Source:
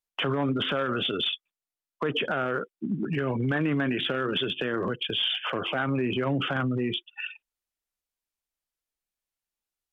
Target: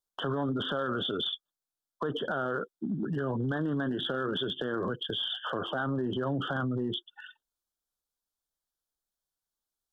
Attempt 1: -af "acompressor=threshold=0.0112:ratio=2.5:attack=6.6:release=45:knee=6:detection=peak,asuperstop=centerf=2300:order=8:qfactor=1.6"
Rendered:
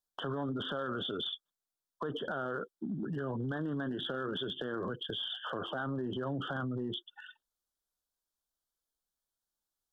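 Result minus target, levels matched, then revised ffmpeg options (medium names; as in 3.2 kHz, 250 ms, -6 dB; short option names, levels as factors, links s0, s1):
compression: peak gain reduction +5 dB
-af "acompressor=threshold=0.0299:ratio=2.5:attack=6.6:release=45:knee=6:detection=peak,asuperstop=centerf=2300:order=8:qfactor=1.6"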